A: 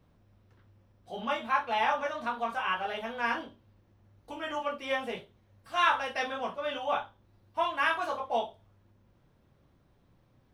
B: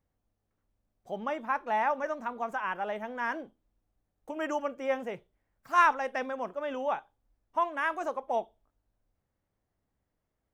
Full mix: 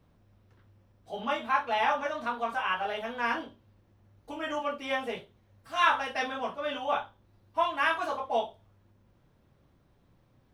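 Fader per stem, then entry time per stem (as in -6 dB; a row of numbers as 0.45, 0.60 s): +0.5, -9.0 dB; 0.00, 0.00 s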